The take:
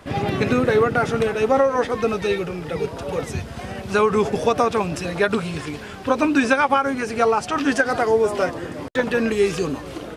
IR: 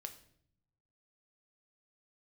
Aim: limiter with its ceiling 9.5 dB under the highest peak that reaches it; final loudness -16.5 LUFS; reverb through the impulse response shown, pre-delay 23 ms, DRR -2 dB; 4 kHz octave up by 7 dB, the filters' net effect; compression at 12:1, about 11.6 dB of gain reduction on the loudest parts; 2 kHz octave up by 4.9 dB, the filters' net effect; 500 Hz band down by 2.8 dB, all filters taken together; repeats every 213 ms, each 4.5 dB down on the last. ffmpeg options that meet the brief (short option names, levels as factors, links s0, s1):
-filter_complex "[0:a]equalizer=f=500:t=o:g=-3.5,equalizer=f=2000:t=o:g=5.5,equalizer=f=4000:t=o:g=7,acompressor=threshold=0.0708:ratio=12,alimiter=limit=0.0841:level=0:latency=1,aecho=1:1:213|426|639|852|1065|1278|1491|1704|1917:0.596|0.357|0.214|0.129|0.0772|0.0463|0.0278|0.0167|0.01,asplit=2[s0][s1];[1:a]atrim=start_sample=2205,adelay=23[s2];[s1][s2]afir=irnorm=-1:irlink=0,volume=2[s3];[s0][s3]amix=inputs=2:normalize=0,volume=2.66"